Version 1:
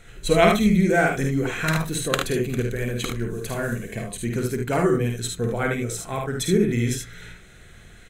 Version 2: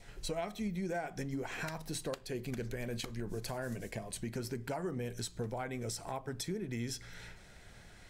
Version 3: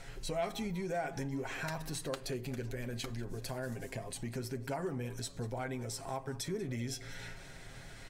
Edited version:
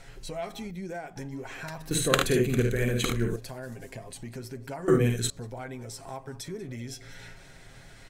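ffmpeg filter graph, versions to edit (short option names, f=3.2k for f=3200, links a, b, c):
-filter_complex "[0:a]asplit=2[a][b];[2:a]asplit=4[c][d][e][f];[c]atrim=end=0.712[g];[1:a]atrim=start=0.708:end=1.162[h];[d]atrim=start=1.158:end=1.912[i];[a]atrim=start=1.908:end=3.362[j];[e]atrim=start=3.358:end=4.882[k];[b]atrim=start=4.878:end=5.302[l];[f]atrim=start=5.298[m];[g][h]acrossfade=d=0.004:c1=hsin:c2=hsin[n];[n][i]acrossfade=d=0.004:c1=hsin:c2=hsin[o];[o][j]acrossfade=d=0.004:c1=hsin:c2=hsin[p];[p][k]acrossfade=d=0.004:c1=hsin:c2=hsin[q];[q][l]acrossfade=d=0.004:c1=hsin:c2=hsin[r];[r][m]acrossfade=d=0.004:c1=hsin:c2=hsin"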